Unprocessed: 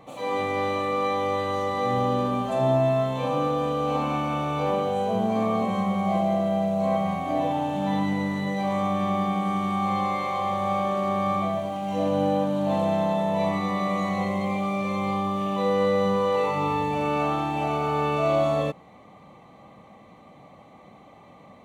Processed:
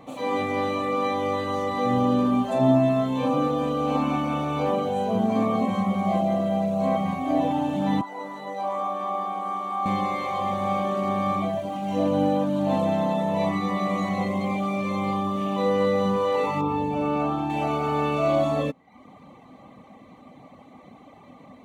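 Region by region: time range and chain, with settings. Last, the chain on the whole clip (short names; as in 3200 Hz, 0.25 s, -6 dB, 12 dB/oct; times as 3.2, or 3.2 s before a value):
8.01–9.86 HPF 540 Hz + resonant high shelf 1500 Hz -6.5 dB, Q 1.5
16.61–17.5 high shelf 2200 Hz -8 dB + notch 1900 Hz, Q 5.1
whole clip: reverb removal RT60 0.61 s; bell 260 Hz +10 dB 0.3 oct; gain +1.5 dB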